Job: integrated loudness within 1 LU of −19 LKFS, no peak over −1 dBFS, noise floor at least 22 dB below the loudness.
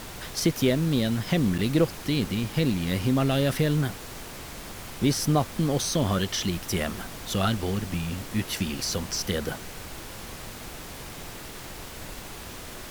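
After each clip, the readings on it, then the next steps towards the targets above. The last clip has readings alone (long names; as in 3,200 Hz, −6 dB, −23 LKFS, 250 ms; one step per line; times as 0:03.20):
number of dropouts 1; longest dropout 6.7 ms; background noise floor −40 dBFS; target noise floor −49 dBFS; integrated loudness −26.5 LKFS; sample peak −10.5 dBFS; target loudness −19.0 LKFS
→ repair the gap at 0:01.58, 6.7 ms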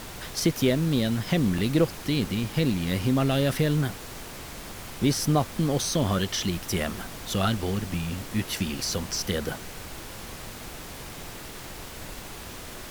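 number of dropouts 0; background noise floor −40 dBFS; target noise floor −49 dBFS
→ noise reduction from a noise print 9 dB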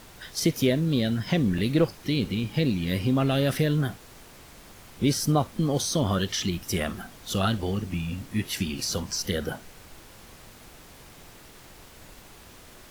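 background noise floor −49 dBFS; integrated loudness −26.5 LKFS; sample peak −10.5 dBFS; target loudness −19.0 LKFS
→ level +7.5 dB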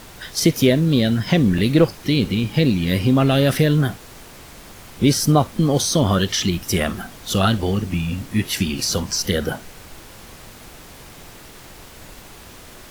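integrated loudness −19.0 LKFS; sample peak −3.0 dBFS; background noise floor −42 dBFS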